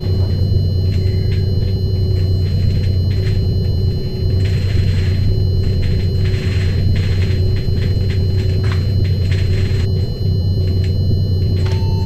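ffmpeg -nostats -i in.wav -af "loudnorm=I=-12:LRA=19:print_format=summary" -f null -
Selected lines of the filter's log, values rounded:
Input Integrated:    -16.7 LUFS
Input True Peak:      -3.3 dBTP
Input LRA:             0.1 LU
Input Threshold:     -26.7 LUFS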